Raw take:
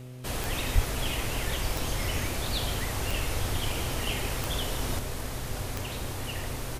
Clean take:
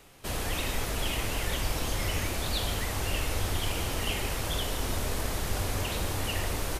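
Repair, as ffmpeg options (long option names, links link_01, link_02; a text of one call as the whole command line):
ffmpeg -i in.wav -filter_complex "[0:a]adeclick=threshold=4,bandreject=frequency=125.9:width_type=h:width=4,bandreject=frequency=251.8:width_type=h:width=4,bandreject=frequency=377.7:width_type=h:width=4,bandreject=frequency=503.6:width_type=h:width=4,bandreject=frequency=629.5:width_type=h:width=4,asplit=3[link_01][link_02][link_03];[link_01]afade=type=out:start_time=0.74:duration=0.02[link_04];[link_02]highpass=frequency=140:width=0.5412,highpass=frequency=140:width=1.3066,afade=type=in:start_time=0.74:duration=0.02,afade=type=out:start_time=0.86:duration=0.02[link_05];[link_03]afade=type=in:start_time=0.86:duration=0.02[link_06];[link_04][link_05][link_06]amix=inputs=3:normalize=0,asetnsamples=nb_out_samples=441:pad=0,asendcmd='4.99 volume volume 4dB',volume=0dB" out.wav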